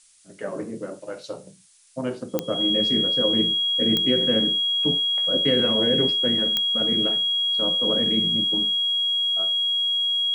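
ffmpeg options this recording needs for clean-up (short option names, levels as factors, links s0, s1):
-af "adeclick=t=4,bandreject=f=3300:w=30,afftdn=nr=26:nf=-44"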